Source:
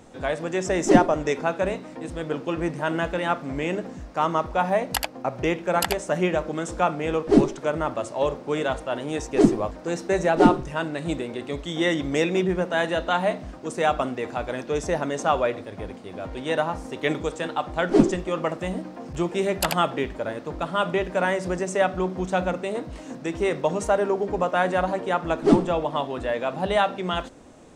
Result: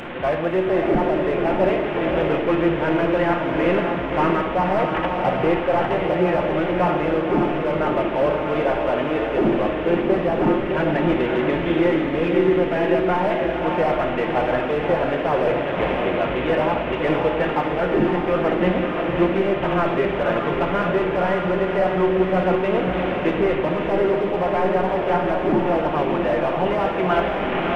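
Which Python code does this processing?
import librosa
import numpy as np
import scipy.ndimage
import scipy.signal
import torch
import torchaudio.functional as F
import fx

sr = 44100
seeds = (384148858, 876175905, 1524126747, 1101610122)

p1 = fx.delta_mod(x, sr, bps=16000, step_db=-33.5)
p2 = fx.low_shelf(p1, sr, hz=190.0, db=-8.0)
p3 = np.clip(10.0 ** (26.5 / 20.0) * p2, -1.0, 1.0) / 10.0 ** (26.5 / 20.0)
p4 = p2 + F.gain(torch.from_numpy(p3), -4.5).numpy()
p5 = fx.rider(p4, sr, range_db=10, speed_s=0.5)
p6 = p5 + fx.echo_diffused(p5, sr, ms=580, feedback_pct=42, wet_db=-4, dry=0)
p7 = fx.room_shoebox(p6, sr, seeds[0], volume_m3=1100.0, walls='mixed', distance_m=0.88)
y = F.gain(torch.from_numpy(p7), 2.0).numpy()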